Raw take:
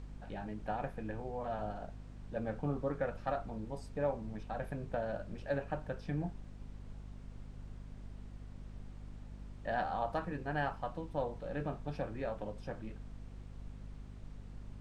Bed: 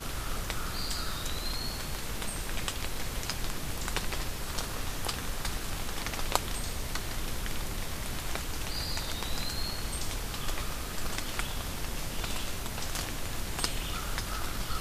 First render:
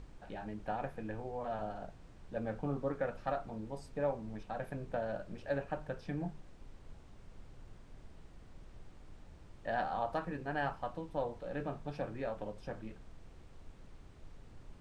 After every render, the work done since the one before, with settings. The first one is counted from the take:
mains-hum notches 50/100/150/200/250 Hz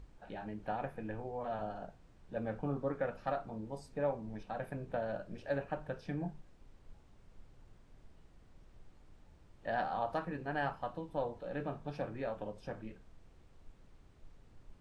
noise reduction from a noise print 6 dB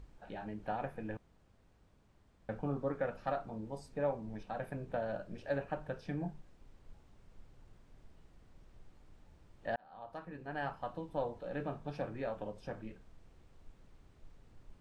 0:01.17–0:02.49: fill with room tone
0:09.76–0:11.01: fade in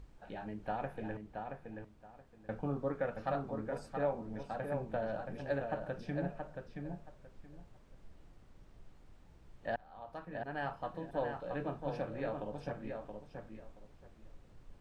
feedback echo with a low-pass in the loop 675 ms, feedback 21%, low-pass 3,600 Hz, level −5 dB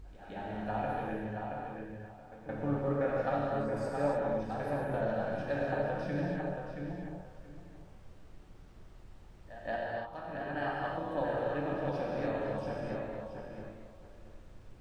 backwards echo 171 ms −13.5 dB
reverb whose tail is shaped and stops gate 320 ms flat, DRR −3.5 dB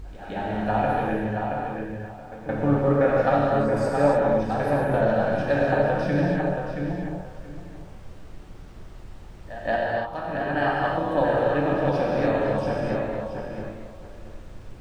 level +11.5 dB

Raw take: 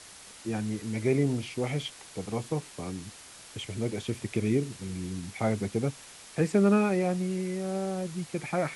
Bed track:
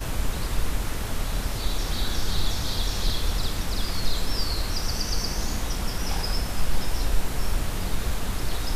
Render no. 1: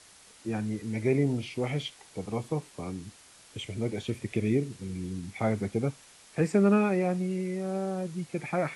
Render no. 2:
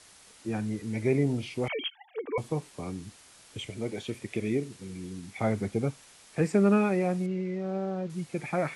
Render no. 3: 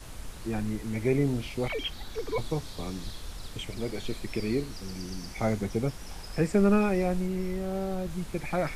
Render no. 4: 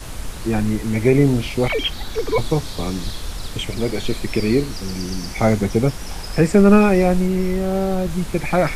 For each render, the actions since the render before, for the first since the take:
noise reduction from a noise print 6 dB
0:01.68–0:02.38: three sine waves on the formant tracks; 0:03.70–0:05.38: low-shelf EQ 150 Hz −10 dB; 0:07.26–0:08.10: high-frequency loss of the air 160 metres
mix in bed track −15 dB
level +11.5 dB; brickwall limiter −3 dBFS, peak gain reduction 2 dB

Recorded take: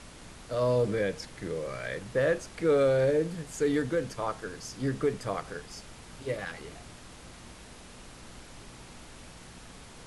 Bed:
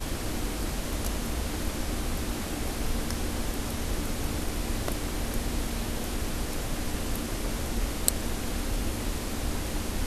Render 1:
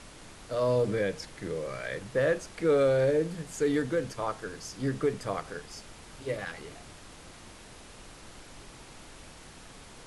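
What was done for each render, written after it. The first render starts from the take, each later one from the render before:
hum removal 60 Hz, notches 4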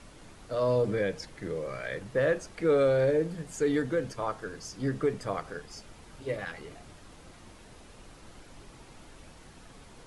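broadband denoise 6 dB, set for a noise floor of −50 dBFS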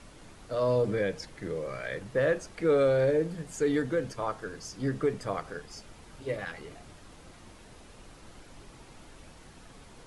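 no processing that can be heard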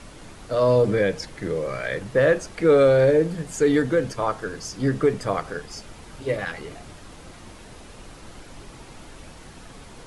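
level +8 dB

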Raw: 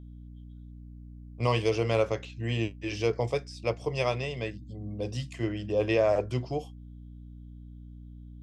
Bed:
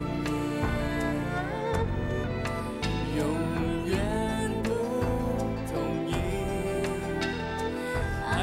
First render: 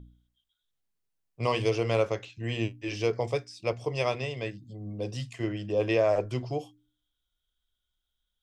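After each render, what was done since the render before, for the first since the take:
hum removal 60 Hz, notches 5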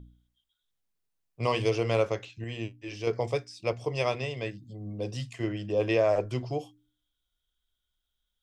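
0:02.44–0:03.07: clip gain −5.5 dB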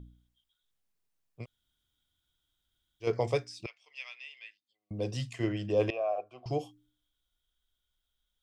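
0:01.41–0:03.05: fill with room tone, crossfade 0.10 s
0:03.66–0:04.91: four-pole ladder band-pass 2,900 Hz, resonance 40%
0:05.90–0:06.46: formant filter a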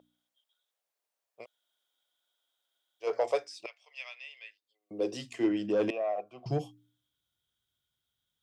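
soft clipping −23 dBFS, distortion −15 dB
high-pass filter sweep 590 Hz → 110 Hz, 0:04.08–0:07.16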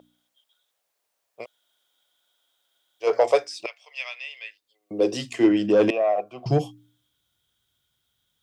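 level +10 dB

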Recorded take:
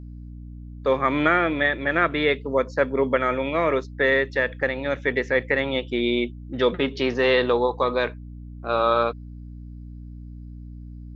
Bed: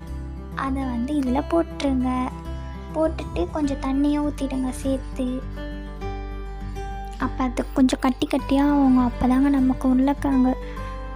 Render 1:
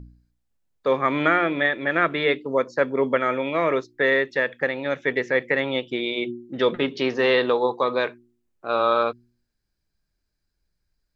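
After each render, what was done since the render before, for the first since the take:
hum removal 60 Hz, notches 6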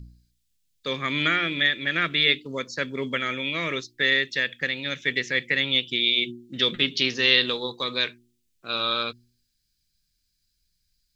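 drawn EQ curve 170 Hz 0 dB, 800 Hz −16 dB, 3,400 Hz +11 dB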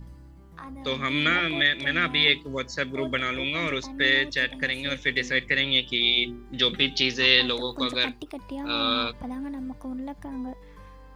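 mix in bed −15.5 dB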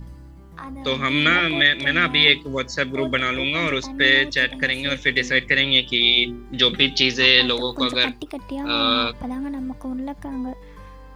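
level +5.5 dB
brickwall limiter −1 dBFS, peak gain reduction 3 dB

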